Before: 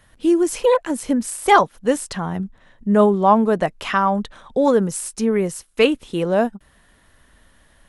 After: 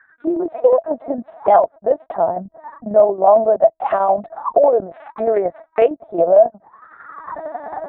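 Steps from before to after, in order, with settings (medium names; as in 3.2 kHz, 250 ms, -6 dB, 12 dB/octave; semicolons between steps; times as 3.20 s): local Wiener filter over 15 samples; recorder AGC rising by 30 dB/s; LPC vocoder at 8 kHz pitch kept; 4.91–5.86 s: peaking EQ 1.9 kHz +12 dB 1.7 oct; auto-wah 660–1600 Hz, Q 15, down, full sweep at -20 dBFS; distance through air 66 m; tremolo saw down 11 Hz, depth 55%; loudness maximiser +25 dB; trim -2 dB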